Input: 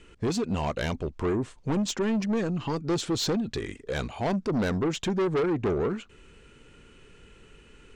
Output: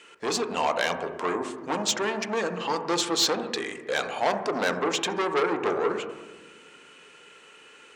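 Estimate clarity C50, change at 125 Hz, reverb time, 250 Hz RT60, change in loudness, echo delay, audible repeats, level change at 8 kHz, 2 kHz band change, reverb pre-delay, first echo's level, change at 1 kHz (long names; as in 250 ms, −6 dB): 9.0 dB, −12.5 dB, 1.3 s, 2.1 s, +1.5 dB, no echo audible, no echo audible, +7.0 dB, +7.5 dB, 4 ms, no echo audible, +7.5 dB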